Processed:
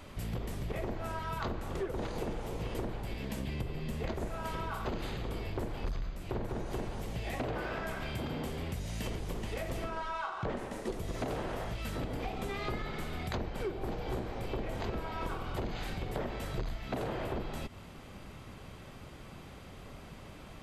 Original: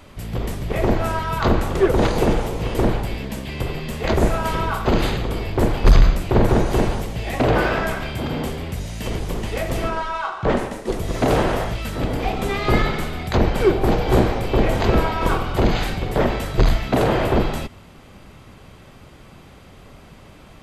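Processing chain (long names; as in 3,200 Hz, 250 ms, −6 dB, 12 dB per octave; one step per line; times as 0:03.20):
0:03.40–0:04.12: low-shelf EQ 420 Hz +7 dB
downward compressor 8 to 1, threshold −29 dBFS, peak gain reduction 21.5 dB
level −4.5 dB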